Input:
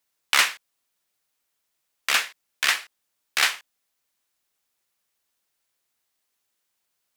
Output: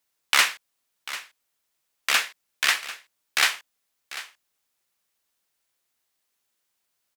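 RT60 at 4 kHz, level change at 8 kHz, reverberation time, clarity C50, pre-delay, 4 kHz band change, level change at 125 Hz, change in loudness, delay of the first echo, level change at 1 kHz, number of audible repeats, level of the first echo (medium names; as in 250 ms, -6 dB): no reverb, 0.0 dB, no reverb, no reverb, no reverb, 0.0 dB, no reading, -0.5 dB, 744 ms, 0.0 dB, 1, -15.0 dB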